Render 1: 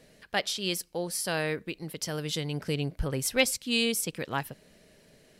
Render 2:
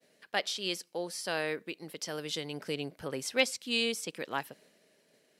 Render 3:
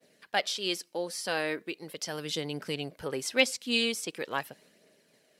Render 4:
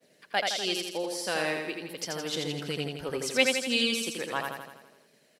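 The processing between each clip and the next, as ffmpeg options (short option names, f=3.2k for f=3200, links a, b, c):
-filter_complex "[0:a]agate=range=-33dB:threshold=-53dB:ratio=3:detection=peak,highpass=260,acrossover=split=7600[a][b];[b]acompressor=threshold=-47dB:ratio=4:attack=1:release=60[c];[a][c]amix=inputs=2:normalize=0,volume=-2.5dB"
-af "aphaser=in_gain=1:out_gain=1:delay=4.3:decay=0.31:speed=0.41:type=triangular,volume=2dB"
-af "aecho=1:1:83|166|249|332|415|498|581|664:0.631|0.353|0.198|0.111|0.0621|0.0347|0.0195|0.0109"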